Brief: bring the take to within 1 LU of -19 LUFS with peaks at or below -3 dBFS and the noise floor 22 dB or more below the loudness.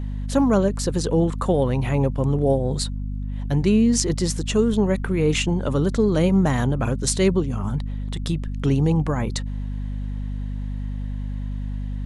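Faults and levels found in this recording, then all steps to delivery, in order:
hum 50 Hz; highest harmonic 250 Hz; hum level -25 dBFS; loudness -22.5 LUFS; peak level -2.0 dBFS; loudness target -19.0 LUFS
-> de-hum 50 Hz, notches 5; trim +3.5 dB; peak limiter -3 dBFS

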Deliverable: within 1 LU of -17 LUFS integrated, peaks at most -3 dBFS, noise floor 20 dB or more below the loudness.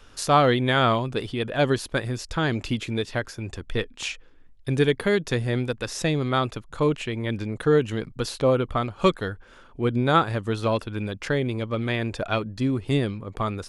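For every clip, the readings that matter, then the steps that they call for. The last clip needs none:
loudness -25.0 LUFS; peak level -6.5 dBFS; loudness target -17.0 LUFS
-> trim +8 dB; peak limiter -3 dBFS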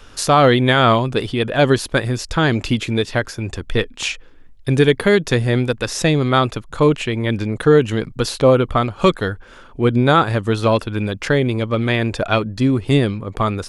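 loudness -17.5 LUFS; peak level -3.0 dBFS; noise floor -43 dBFS

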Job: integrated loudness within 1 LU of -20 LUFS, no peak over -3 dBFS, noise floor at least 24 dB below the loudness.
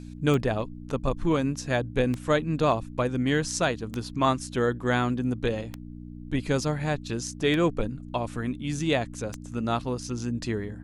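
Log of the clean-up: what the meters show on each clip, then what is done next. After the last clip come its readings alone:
clicks found 6; hum 60 Hz; highest harmonic 300 Hz; hum level -38 dBFS; loudness -27.5 LUFS; peak level -9.5 dBFS; loudness target -20.0 LUFS
-> de-click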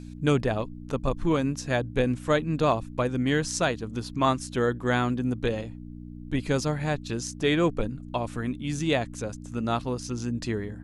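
clicks found 0; hum 60 Hz; highest harmonic 300 Hz; hum level -38 dBFS
-> de-hum 60 Hz, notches 5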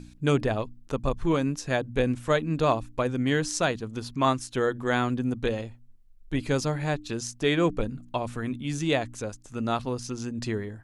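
hum not found; loudness -28.0 LUFS; peak level -10.0 dBFS; loudness target -20.0 LUFS
-> trim +8 dB; peak limiter -3 dBFS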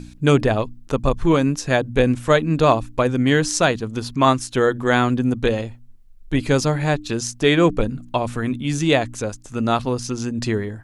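loudness -20.0 LUFS; peak level -3.0 dBFS; noise floor -44 dBFS

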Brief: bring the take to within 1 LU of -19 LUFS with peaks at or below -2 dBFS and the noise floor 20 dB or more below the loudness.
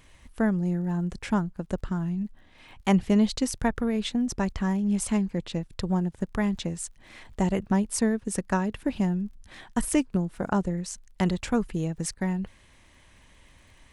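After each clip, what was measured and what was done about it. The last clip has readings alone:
tick rate 29 per s; loudness -28.0 LUFS; peak level -8.5 dBFS; loudness target -19.0 LUFS
-> de-click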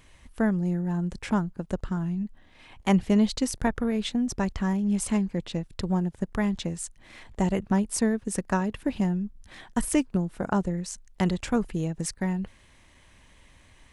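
tick rate 0 per s; loudness -28.0 LUFS; peak level -8.5 dBFS; loudness target -19.0 LUFS
-> trim +9 dB; peak limiter -2 dBFS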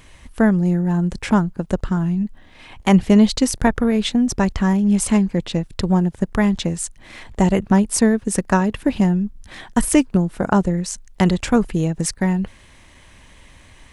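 loudness -19.0 LUFS; peak level -2.0 dBFS; noise floor -48 dBFS

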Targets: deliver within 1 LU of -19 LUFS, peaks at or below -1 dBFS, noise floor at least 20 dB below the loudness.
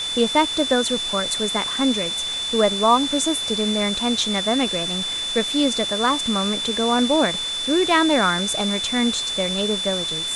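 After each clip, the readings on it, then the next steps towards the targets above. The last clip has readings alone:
steady tone 3.5 kHz; tone level -24 dBFS; noise floor -26 dBFS; noise floor target -40 dBFS; loudness -20.0 LUFS; peak level -5.0 dBFS; loudness target -19.0 LUFS
-> band-stop 3.5 kHz, Q 30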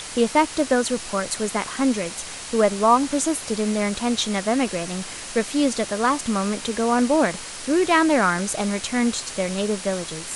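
steady tone not found; noise floor -35 dBFS; noise floor target -42 dBFS
-> noise reduction 7 dB, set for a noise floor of -35 dBFS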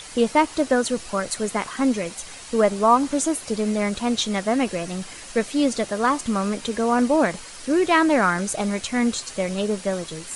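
noise floor -40 dBFS; noise floor target -43 dBFS
-> noise reduction 6 dB, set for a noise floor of -40 dBFS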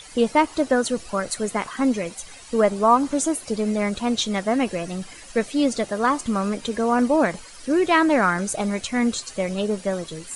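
noise floor -43 dBFS; loudness -22.5 LUFS; peak level -6.0 dBFS; loudness target -19.0 LUFS
-> trim +3.5 dB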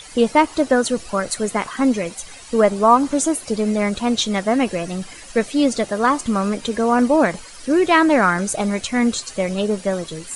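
loudness -19.0 LUFS; peak level -2.5 dBFS; noise floor -39 dBFS

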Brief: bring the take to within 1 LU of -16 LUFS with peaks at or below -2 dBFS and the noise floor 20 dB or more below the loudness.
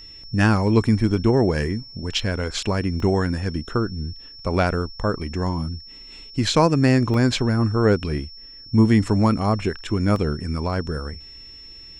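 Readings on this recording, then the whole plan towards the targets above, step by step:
dropouts 4; longest dropout 1.5 ms; steady tone 5.4 kHz; tone level -40 dBFS; loudness -21.5 LUFS; peak level -3.0 dBFS; loudness target -16.0 LUFS
-> interpolate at 2.19/3.00/7.14/10.16 s, 1.5 ms; band-stop 5.4 kHz, Q 30; trim +5.5 dB; peak limiter -2 dBFS

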